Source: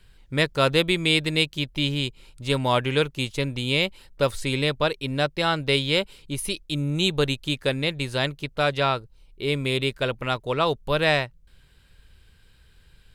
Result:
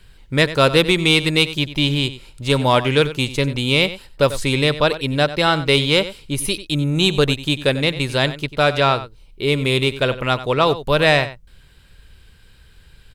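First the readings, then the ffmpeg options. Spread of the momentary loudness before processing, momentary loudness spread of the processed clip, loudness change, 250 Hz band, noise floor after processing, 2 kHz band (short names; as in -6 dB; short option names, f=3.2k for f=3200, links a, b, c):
7 LU, 7 LU, +6.5 dB, +6.5 dB, -49 dBFS, +6.5 dB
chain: -filter_complex "[0:a]acontrast=46,asplit=2[a][b];[b]adelay=93.29,volume=-14dB,highshelf=f=4k:g=-2.1[c];[a][c]amix=inputs=2:normalize=0,volume=1dB"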